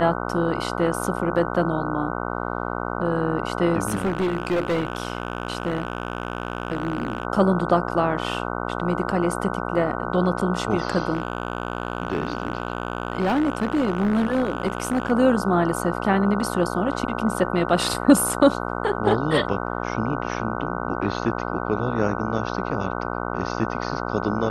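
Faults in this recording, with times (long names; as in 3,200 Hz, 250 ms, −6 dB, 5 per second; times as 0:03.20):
mains buzz 60 Hz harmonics 25 −28 dBFS
0:03.88–0:07.25: clipping −18.5 dBFS
0:11.13–0:15.12: clipping −17 dBFS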